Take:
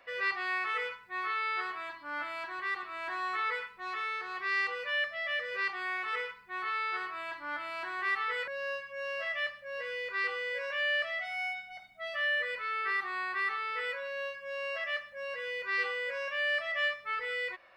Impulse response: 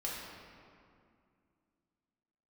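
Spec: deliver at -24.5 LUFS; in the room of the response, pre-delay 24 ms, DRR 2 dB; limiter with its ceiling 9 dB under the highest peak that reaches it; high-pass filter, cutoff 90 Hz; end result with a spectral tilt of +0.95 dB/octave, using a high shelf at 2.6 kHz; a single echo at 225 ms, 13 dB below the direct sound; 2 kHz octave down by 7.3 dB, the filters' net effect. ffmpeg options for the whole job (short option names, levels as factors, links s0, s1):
-filter_complex "[0:a]highpass=90,equalizer=f=2000:t=o:g=-5,highshelf=f=2600:g=-8.5,alimiter=level_in=3.98:limit=0.0631:level=0:latency=1,volume=0.251,aecho=1:1:225:0.224,asplit=2[s0][s1];[1:a]atrim=start_sample=2205,adelay=24[s2];[s1][s2]afir=irnorm=-1:irlink=0,volume=0.596[s3];[s0][s3]amix=inputs=2:normalize=0,volume=6.68"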